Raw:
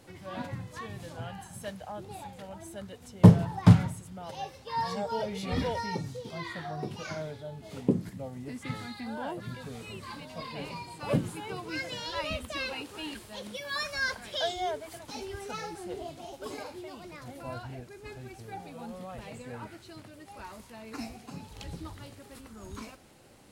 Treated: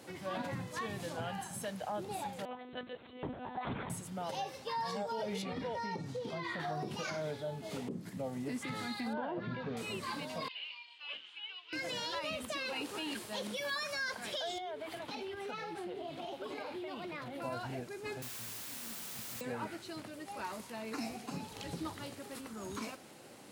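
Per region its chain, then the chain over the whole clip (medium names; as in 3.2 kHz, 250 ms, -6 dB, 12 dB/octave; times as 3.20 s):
2.45–3.90 s: bass shelf 310 Hz -6 dB + monotone LPC vocoder at 8 kHz 250 Hz
5.42–6.60 s: low-pass 3.1 kHz 6 dB/octave + compression 10:1, threshold -37 dBFS
9.13–9.77 s: Gaussian low-pass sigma 2.5 samples + flutter echo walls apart 11.2 m, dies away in 0.24 s
10.48–11.73 s: resonant high-pass 3 kHz, resonance Q 6.9 + tape spacing loss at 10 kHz 43 dB
14.58–17.42 s: resonant high shelf 4.6 kHz -9.5 dB, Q 1.5 + compression 12:1, threshold -41 dBFS
18.22–19.41 s: comb filter that takes the minimum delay 2.9 ms + inverse Chebyshev low-pass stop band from 930 Hz, stop band 70 dB + word length cut 8-bit, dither triangular
whole clip: high-pass 170 Hz 12 dB/octave; compression 6:1, threshold -35 dBFS; peak limiter -33 dBFS; trim +3.5 dB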